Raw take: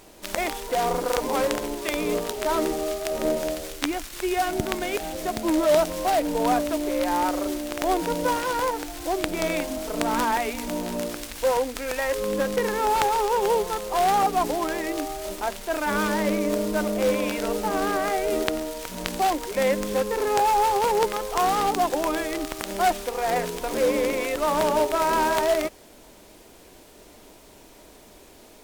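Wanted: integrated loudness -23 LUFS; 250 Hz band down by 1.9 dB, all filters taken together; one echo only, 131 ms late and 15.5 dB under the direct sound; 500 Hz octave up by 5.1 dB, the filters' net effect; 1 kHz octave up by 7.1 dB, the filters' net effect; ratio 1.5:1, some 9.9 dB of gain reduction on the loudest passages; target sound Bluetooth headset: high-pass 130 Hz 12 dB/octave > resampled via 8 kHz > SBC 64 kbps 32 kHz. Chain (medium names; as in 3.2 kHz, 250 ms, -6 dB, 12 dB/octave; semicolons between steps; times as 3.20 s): peaking EQ 250 Hz -5 dB; peaking EQ 500 Hz +5 dB; peaking EQ 1 kHz +7.5 dB; compression 1.5:1, threshold -40 dBFS; high-pass 130 Hz 12 dB/octave; delay 131 ms -15.5 dB; resampled via 8 kHz; trim +5.5 dB; SBC 64 kbps 32 kHz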